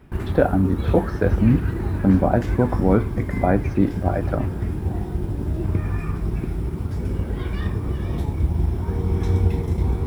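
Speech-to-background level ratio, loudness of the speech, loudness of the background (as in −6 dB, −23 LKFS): 4.0 dB, −21.5 LKFS, −25.5 LKFS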